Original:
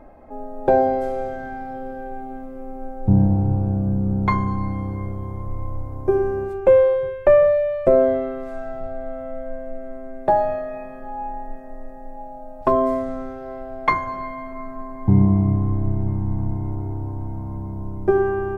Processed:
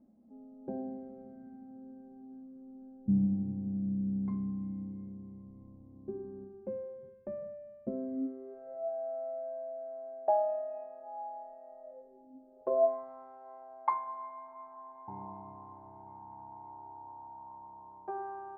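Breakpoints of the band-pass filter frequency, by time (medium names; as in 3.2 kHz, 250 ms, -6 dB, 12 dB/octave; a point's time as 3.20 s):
band-pass filter, Q 11
8.10 s 220 Hz
8.90 s 700 Hz
11.81 s 700 Hz
12.35 s 270 Hz
13.00 s 900 Hz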